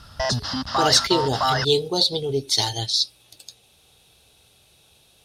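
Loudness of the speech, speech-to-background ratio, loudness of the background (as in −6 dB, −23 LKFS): −21.5 LKFS, 3.0 dB, −24.5 LKFS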